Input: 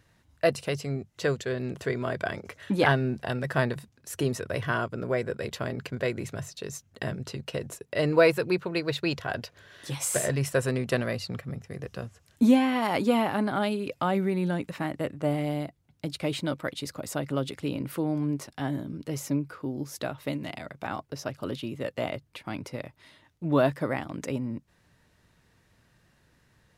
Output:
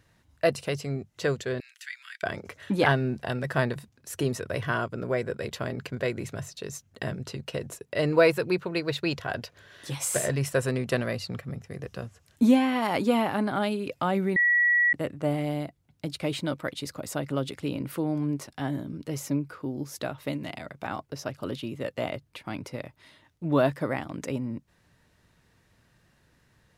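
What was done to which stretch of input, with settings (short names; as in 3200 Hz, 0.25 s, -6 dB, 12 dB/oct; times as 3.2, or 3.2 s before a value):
1.6–2.23 steep high-pass 1700 Hz
14.36–14.93 bleep 1930 Hz -18.5 dBFS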